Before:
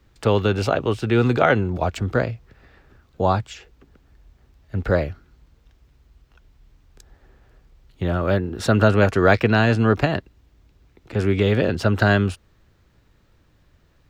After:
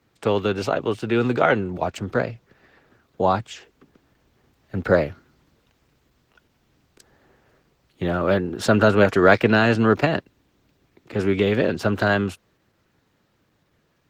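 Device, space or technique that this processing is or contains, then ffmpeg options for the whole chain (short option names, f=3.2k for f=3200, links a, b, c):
video call: -af "highpass=150,dynaudnorm=f=280:g=21:m=13dB,volume=-1dB" -ar 48000 -c:a libopus -b:a 16k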